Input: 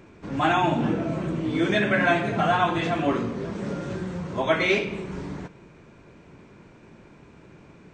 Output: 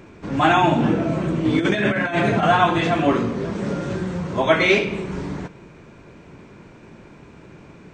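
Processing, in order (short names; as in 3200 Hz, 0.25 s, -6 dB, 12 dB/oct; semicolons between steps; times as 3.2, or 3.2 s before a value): 1.45–2.43 negative-ratio compressor -24 dBFS, ratio -0.5; gain +5.5 dB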